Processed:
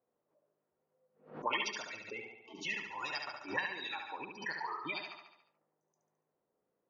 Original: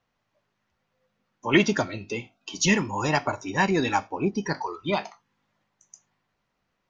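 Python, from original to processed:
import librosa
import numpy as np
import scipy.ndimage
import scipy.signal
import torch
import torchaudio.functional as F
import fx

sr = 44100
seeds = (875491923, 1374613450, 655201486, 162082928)

y = fx.spec_gate(x, sr, threshold_db=-25, keep='strong')
y = fx.high_shelf(y, sr, hz=4400.0, db=-11.5)
y = fx.auto_wah(y, sr, base_hz=440.0, top_hz=4700.0, q=2.3, full_db=-21.5, direction='up')
y = fx.echo_feedback(y, sr, ms=71, feedback_pct=55, wet_db=-5.0)
y = fx.pre_swell(y, sr, db_per_s=140.0)
y = F.gain(torch.from_numpy(y), 1.0).numpy()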